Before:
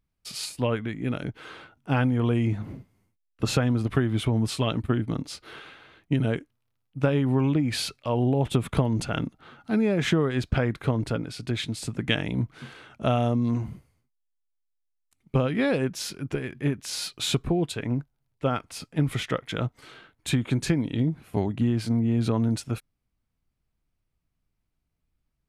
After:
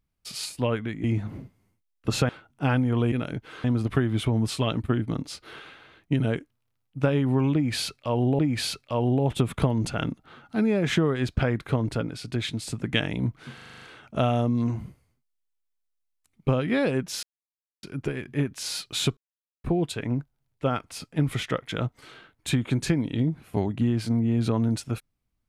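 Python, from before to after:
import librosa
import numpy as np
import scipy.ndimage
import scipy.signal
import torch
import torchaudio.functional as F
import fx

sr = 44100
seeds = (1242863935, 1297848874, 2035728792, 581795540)

y = fx.edit(x, sr, fx.swap(start_s=1.04, length_s=0.52, other_s=2.39, other_length_s=1.25),
    fx.repeat(start_s=7.54, length_s=0.85, count=2),
    fx.stutter(start_s=12.69, slice_s=0.04, count=8),
    fx.insert_silence(at_s=16.1, length_s=0.6),
    fx.insert_silence(at_s=17.44, length_s=0.47), tone=tone)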